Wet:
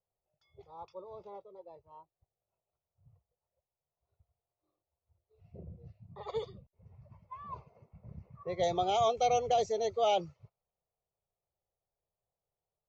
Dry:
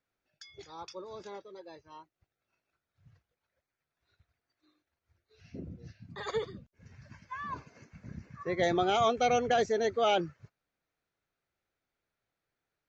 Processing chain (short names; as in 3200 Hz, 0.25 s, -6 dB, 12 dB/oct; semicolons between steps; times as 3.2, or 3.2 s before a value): fixed phaser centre 670 Hz, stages 4; low-pass opened by the level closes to 990 Hz, open at -29 dBFS